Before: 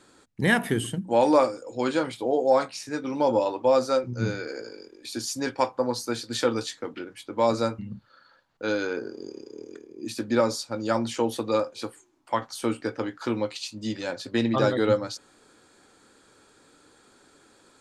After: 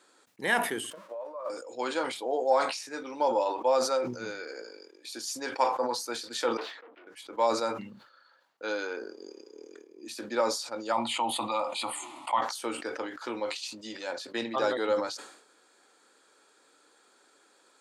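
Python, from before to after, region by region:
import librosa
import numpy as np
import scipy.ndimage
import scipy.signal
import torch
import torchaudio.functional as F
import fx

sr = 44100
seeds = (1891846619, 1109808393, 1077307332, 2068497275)

y = fx.chain(x, sr, fx.crossing_spikes(level_db=-23.0),
    fx.over_compress(threshold_db=-26.0, ratio=-1.0),
    fx.double_bandpass(hz=800.0, octaves=0.79), at=(0.9, 1.5))
y = fx.chain(y, sr, fx.tube_stage(drive_db=39.0, bias=0.75),
    fx.highpass(hz=370.0, slope=12),
    fx.air_absorb(metres=370.0), at=(6.57, 7.07))
y = fx.chain(y, sr, fx.fixed_phaser(hz=1600.0, stages=6),
    fx.resample_bad(factor=2, down='none', up='filtered'),
    fx.env_flatten(amount_pct=70), at=(10.92, 12.41))
y = scipy.signal.sosfilt(scipy.signal.butter(2, 430.0, 'highpass', fs=sr, output='sos'), y)
y = fx.dynamic_eq(y, sr, hz=890.0, q=2.7, threshold_db=-40.0, ratio=4.0, max_db=4)
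y = fx.sustainer(y, sr, db_per_s=76.0)
y = y * 10.0 ** (-4.0 / 20.0)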